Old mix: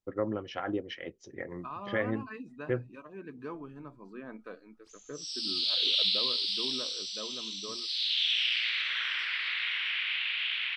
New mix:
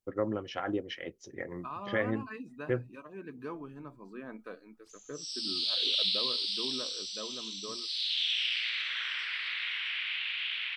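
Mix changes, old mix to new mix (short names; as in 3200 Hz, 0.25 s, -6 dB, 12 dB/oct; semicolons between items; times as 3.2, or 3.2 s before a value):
background -3.5 dB; master: remove air absorption 53 m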